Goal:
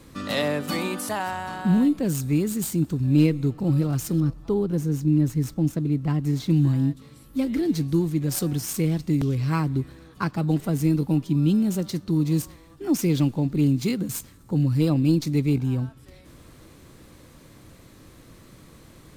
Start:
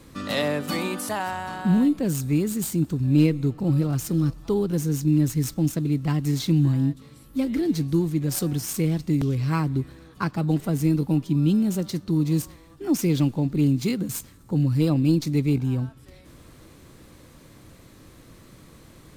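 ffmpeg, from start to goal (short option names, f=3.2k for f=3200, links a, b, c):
-filter_complex "[0:a]asettb=1/sr,asplit=3[a][b][c];[a]atrim=end=4.204[d];[b]atrim=start=4.2:end=6.5,asetpts=PTS-STARTPTS,afade=t=in:d=0.004:c=qsin,afade=t=out:st=2.296:d=0.004:c=qsin,highshelf=f=2k:g=-8.5[e];[c]atrim=start=6.496[f];[d][e]acrossfade=d=0.004:c1=hsin:c2=qsin[g];[g][f]acrossfade=d=0.004:c1=qsin:c2=hsin"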